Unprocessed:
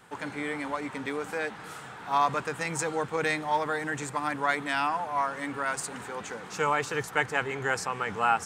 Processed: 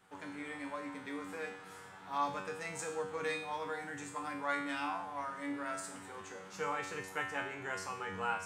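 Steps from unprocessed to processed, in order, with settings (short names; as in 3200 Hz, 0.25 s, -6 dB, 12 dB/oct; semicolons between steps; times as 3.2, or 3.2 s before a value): resonator 95 Hz, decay 0.63 s, harmonics all, mix 90%; gain +1.5 dB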